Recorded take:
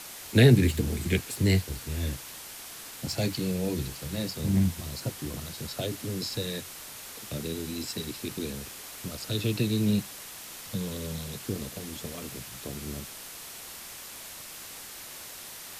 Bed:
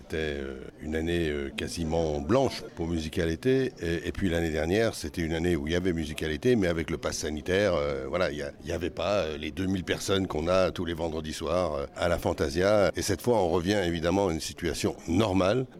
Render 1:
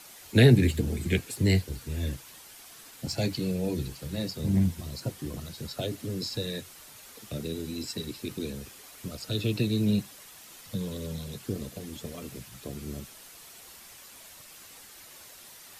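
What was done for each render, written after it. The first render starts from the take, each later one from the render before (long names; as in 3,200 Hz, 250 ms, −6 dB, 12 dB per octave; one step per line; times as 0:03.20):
broadband denoise 8 dB, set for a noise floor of −43 dBFS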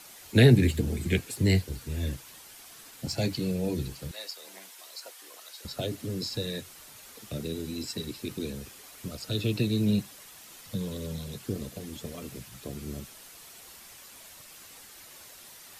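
0:04.11–0:05.65: Bessel high-pass filter 870 Hz, order 4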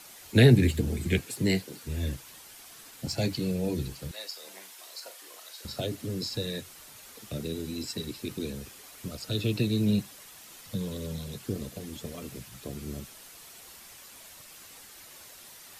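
0:01.19–0:01.83: high-pass filter 81 Hz → 210 Hz 24 dB per octave
0:04.29–0:05.81: flutter between parallel walls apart 6.7 metres, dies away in 0.26 s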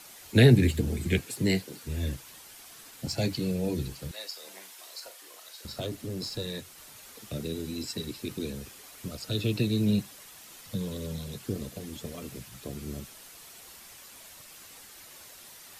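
0:05.06–0:06.78: tube saturation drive 25 dB, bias 0.4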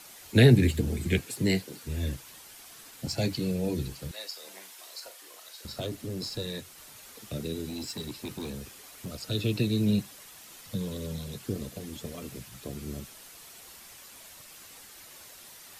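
0:07.69–0:09.15: gain into a clipping stage and back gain 32 dB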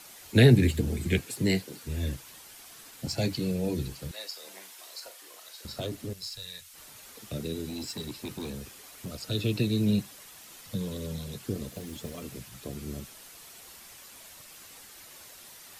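0:06.13–0:06.74: guitar amp tone stack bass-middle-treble 10-0-10
0:11.68–0:12.23: one scale factor per block 5 bits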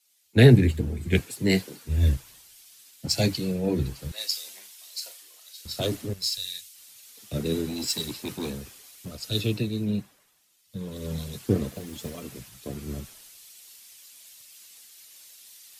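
speech leveller within 5 dB 0.5 s
multiband upward and downward expander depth 100%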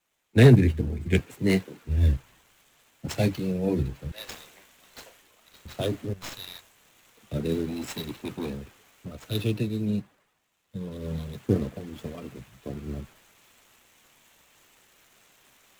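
running median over 9 samples
hard clipping −7 dBFS, distortion −24 dB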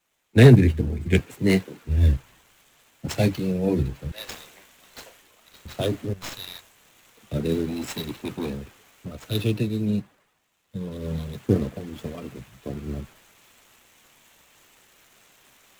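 level +3 dB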